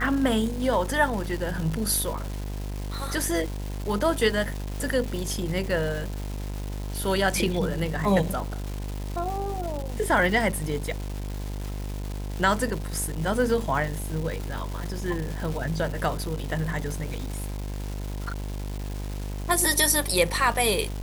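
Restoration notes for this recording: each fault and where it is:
buzz 50 Hz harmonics 21 -32 dBFS
crackle 590 per s -32 dBFS

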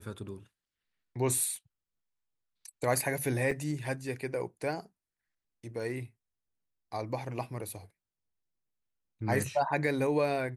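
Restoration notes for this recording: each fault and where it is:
3.51 s: dropout 3.9 ms

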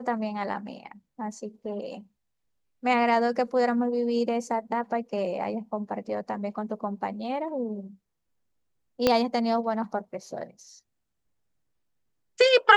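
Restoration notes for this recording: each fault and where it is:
9.07 s: pop -7 dBFS

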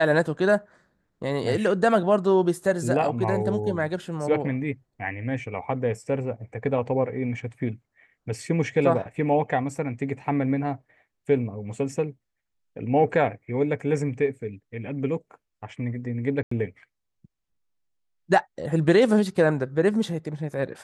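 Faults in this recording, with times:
16.43–16.51 s: dropout 84 ms

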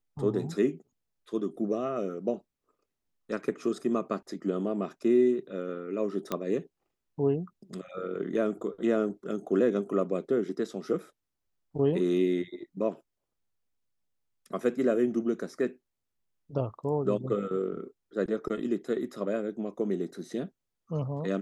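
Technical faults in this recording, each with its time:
6.32 s: pop -16 dBFS

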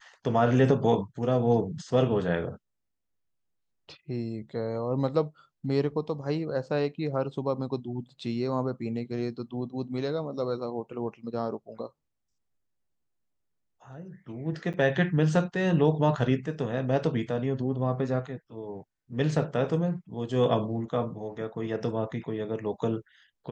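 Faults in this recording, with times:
14.73–14.74 s: dropout 8.3 ms

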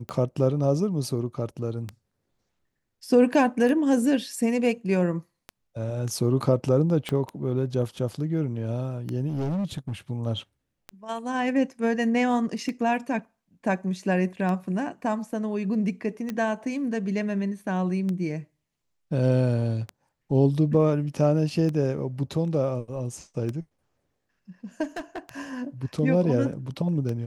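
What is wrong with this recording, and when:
tick 33 1/3 rpm -19 dBFS
7.09 s: pop -15 dBFS
9.28–9.92 s: clipped -24.5 dBFS
16.30 s: pop -18 dBFS
24.83–25.19 s: clipped -29.5 dBFS

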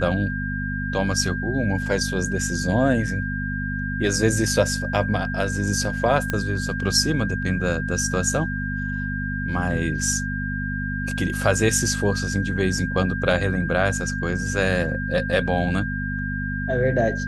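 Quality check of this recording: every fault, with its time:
hum 50 Hz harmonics 5 -28 dBFS
whine 1.6 kHz -29 dBFS
6.30 s: pop -10 dBFS

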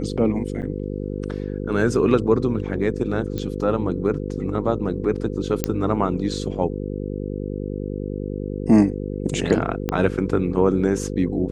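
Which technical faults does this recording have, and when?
buzz 50 Hz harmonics 10 -28 dBFS
0.62–0.63 s: dropout 8 ms
3.38 s: pop -15 dBFS
5.64 s: pop -4 dBFS
9.89 s: pop -8 dBFS

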